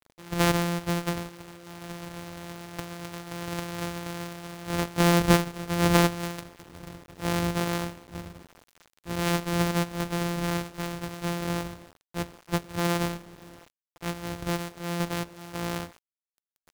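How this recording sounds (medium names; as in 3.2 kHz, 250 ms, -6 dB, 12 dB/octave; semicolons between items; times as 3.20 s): a buzz of ramps at a fixed pitch in blocks of 256 samples; tremolo saw down 0.6 Hz, depth 40%; a quantiser's noise floor 8-bit, dither none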